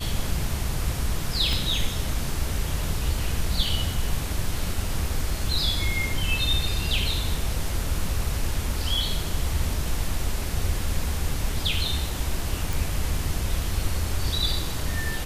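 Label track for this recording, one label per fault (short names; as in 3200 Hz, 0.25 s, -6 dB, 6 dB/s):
1.530000	1.530000	pop
12.730000	12.730000	pop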